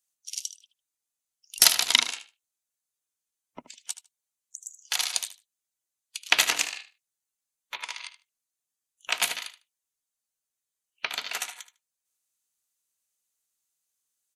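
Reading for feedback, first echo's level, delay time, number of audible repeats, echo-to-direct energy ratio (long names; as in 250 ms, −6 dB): 16%, −13.5 dB, 76 ms, 2, −13.5 dB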